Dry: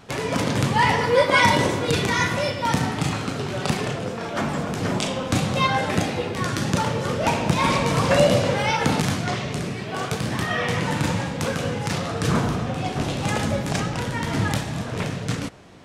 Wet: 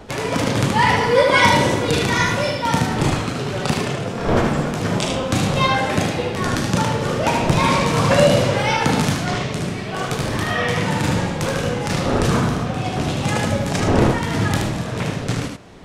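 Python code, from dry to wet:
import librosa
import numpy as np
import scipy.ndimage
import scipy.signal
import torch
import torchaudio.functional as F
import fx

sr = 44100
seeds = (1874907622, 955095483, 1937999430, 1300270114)

p1 = fx.dmg_wind(x, sr, seeds[0], corner_hz=500.0, level_db=-32.0)
p2 = p1 + fx.echo_single(p1, sr, ms=76, db=-4.5, dry=0)
y = p2 * 10.0 ** (2.0 / 20.0)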